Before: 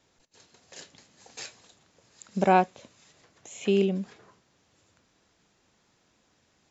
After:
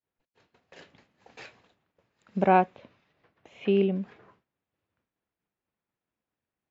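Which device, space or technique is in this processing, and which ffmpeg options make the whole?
hearing-loss simulation: -filter_complex "[0:a]asettb=1/sr,asplit=3[a][b][c];[a]atrim=end=2.774[d];[b]atrim=start=2.77:end=3.91,asetpts=PTS-STARTPTS,afade=t=in:d=0.004:c=qsin,afade=t=out:st=1.136:d=0.004:c=qsin,lowpass=f=5.7k:w=0.5412,lowpass=f=5.7k:w=1.3066[e];[c]atrim=start=3.906[f];[d][e]acrossfade=d=0.004:c1=hsin:c2=qsin[g];[g][f]acrossfade=d=0.004:c1=qsin:c2=hsin,lowpass=2.3k,agate=range=-33dB:threshold=-56dB:ratio=3:detection=peak,equalizer=f=2.6k:w=2.1:g=2.5"

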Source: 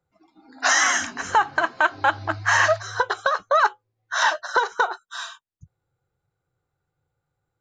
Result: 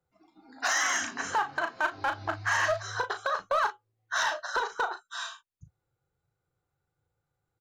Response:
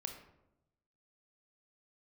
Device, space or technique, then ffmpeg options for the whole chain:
limiter into clipper: -filter_complex "[0:a]alimiter=limit=-13.5dB:level=0:latency=1:release=175,asoftclip=type=hard:threshold=-16.5dB,asettb=1/sr,asplit=3[a][b][c];[a]atrim=end=0.694[d];[b]atrim=start=0.69:end=1.75,asetpts=PTS-STARTPTS,afade=t=in:d=0.004:c=qsin,afade=t=out:st=1.056:d=0.004:c=qsin,highpass=f=130:p=1[e];[c]atrim=start=1.746[f];[d][e]acrossfade=d=0.004:c1=hsin:c2=qsin[g];[g][f]acrossfade=d=0.004:c1=qsin:c2=hsin,asplit=2[h][i];[i]adelay=36,volume=-8dB[j];[h][j]amix=inputs=2:normalize=0,volume=-4dB"

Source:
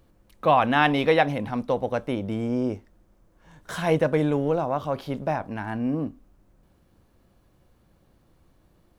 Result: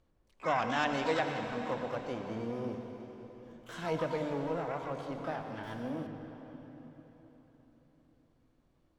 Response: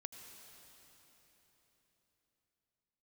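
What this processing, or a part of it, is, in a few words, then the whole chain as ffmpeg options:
shimmer-style reverb: -filter_complex "[0:a]lowpass=7.1k,asplit=2[a][b];[b]asetrate=88200,aresample=44100,atempo=0.5,volume=-9dB[c];[a][c]amix=inputs=2:normalize=0[d];[1:a]atrim=start_sample=2205[e];[d][e]afir=irnorm=-1:irlink=0,asettb=1/sr,asplit=3[f][g][h];[f]atrim=end=5.634[i];[g]atrim=start=5.63:end=6.07,asetpts=PTS-STARTPTS,afade=t=in:d=0.004:c=qsin,afade=t=out:st=0.436:d=0.004:c=qsin,aemphasis=mode=production:type=50fm[j];[h]atrim=start=6.066[k];[i][j]acrossfade=d=0.004:c1=hsin:c2=qsin[l];[l][k]acrossfade=d=0.004:c1=qsin:c2=hsin,bandreject=f=50:t=h:w=6,bandreject=f=100:t=h:w=6,bandreject=f=150:t=h:w=6,bandreject=f=200:t=h:w=6,bandreject=f=250:t=h:w=6,volume=-7dB"

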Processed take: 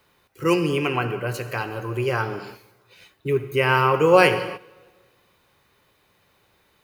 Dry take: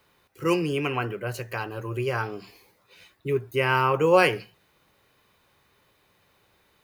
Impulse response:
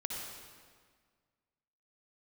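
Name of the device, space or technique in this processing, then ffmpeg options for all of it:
keyed gated reverb: -filter_complex "[0:a]asplit=3[a][b][c];[1:a]atrim=start_sample=2205[d];[b][d]afir=irnorm=-1:irlink=0[e];[c]apad=whole_len=301342[f];[e][f]sidechaingate=range=-13dB:threshold=-50dB:ratio=16:detection=peak,volume=-7.5dB[g];[a][g]amix=inputs=2:normalize=0,volume=1dB"

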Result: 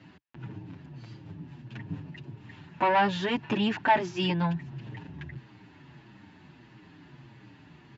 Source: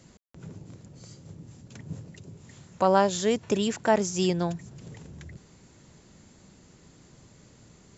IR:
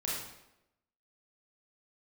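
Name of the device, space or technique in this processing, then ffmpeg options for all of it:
barber-pole flanger into a guitar amplifier: -filter_complex "[0:a]asplit=2[a][b];[b]adelay=7.2,afreqshift=-1.6[c];[a][c]amix=inputs=2:normalize=1,asoftclip=type=tanh:threshold=-23.5dB,highpass=90,equalizer=f=130:t=q:w=4:g=7,equalizer=f=300:t=q:w=4:g=8,equalizer=f=500:t=q:w=4:g=-9,equalizer=f=910:t=q:w=4:g=9,equalizer=f=1.7k:t=q:w=4:g=9,equalizer=f=2.7k:t=q:w=4:g=8,lowpass=f=4k:w=0.5412,lowpass=f=4k:w=1.3066,volume=3dB"

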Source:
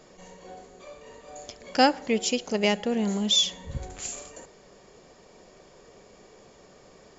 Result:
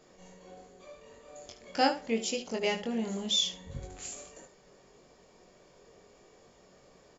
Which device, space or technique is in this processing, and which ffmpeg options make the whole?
slapback doubling: -filter_complex "[0:a]asplit=3[a][b][c];[b]adelay=22,volume=-3.5dB[d];[c]adelay=76,volume=-12dB[e];[a][d][e]amix=inputs=3:normalize=0,volume=-8dB"

